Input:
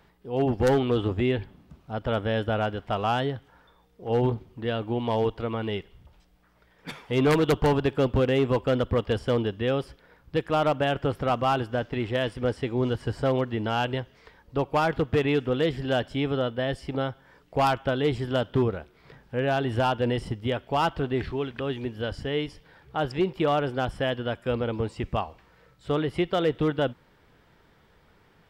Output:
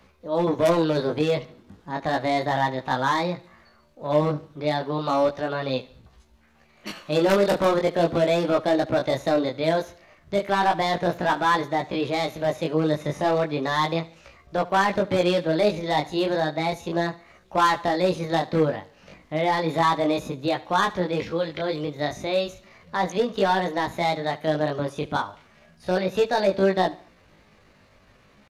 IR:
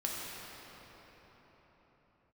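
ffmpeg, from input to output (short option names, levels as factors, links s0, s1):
-filter_complex "[0:a]acrossover=split=120[s0][s1];[s0]acompressor=threshold=0.00282:ratio=5[s2];[s2][s1]amix=inputs=2:normalize=0,volume=7.5,asoftclip=hard,volume=0.133,flanger=delay=19.5:depth=6.1:speed=0.34,asetrate=55563,aresample=44100,atempo=0.793701,asplit=2[s3][s4];[s4]aecho=0:1:73|146|219:0.1|0.04|0.016[s5];[s3][s5]amix=inputs=2:normalize=0,aresample=32000,aresample=44100,volume=2.11"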